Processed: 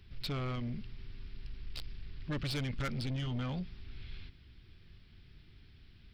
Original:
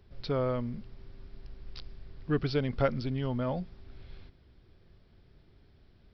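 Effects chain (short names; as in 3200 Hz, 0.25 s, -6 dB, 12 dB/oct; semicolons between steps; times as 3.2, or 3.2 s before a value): EQ curve 110 Hz 0 dB, 300 Hz -4 dB, 560 Hz -14 dB, 2700 Hz +7 dB, 6300 Hz 0 dB; soft clip -35 dBFS, distortion -8 dB; gain +3 dB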